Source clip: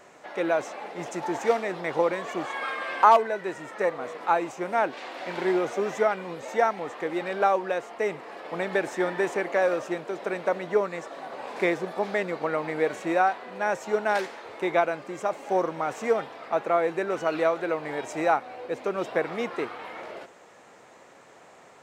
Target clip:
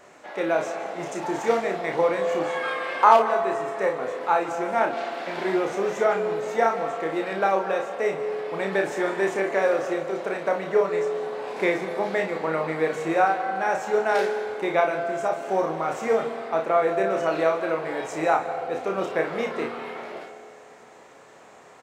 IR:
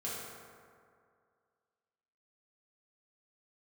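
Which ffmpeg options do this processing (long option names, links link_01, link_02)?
-filter_complex "[0:a]aecho=1:1:31|57:0.596|0.335,asplit=2[link_01][link_02];[1:a]atrim=start_sample=2205,adelay=148[link_03];[link_02][link_03]afir=irnorm=-1:irlink=0,volume=-12.5dB[link_04];[link_01][link_04]amix=inputs=2:normalize=0"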